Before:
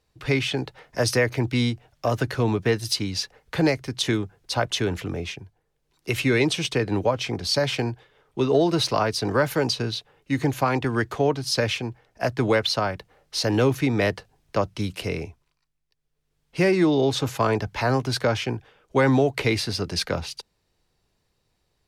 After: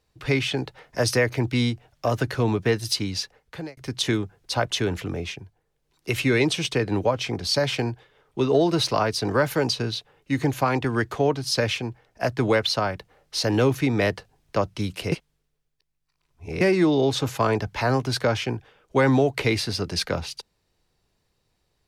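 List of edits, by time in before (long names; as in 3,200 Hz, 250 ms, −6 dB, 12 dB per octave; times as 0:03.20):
0:03.12–0:03.77: fade out
0:15.12–0:16.61: reverse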